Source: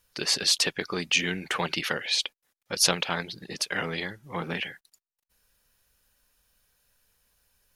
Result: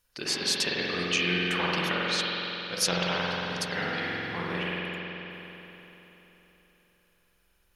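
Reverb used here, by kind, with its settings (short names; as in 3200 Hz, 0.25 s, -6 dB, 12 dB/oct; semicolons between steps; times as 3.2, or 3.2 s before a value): spring tank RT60 3.7 s, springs 45 ms, chirp 60 ms, DRR -5.5 dB; gain -5 dB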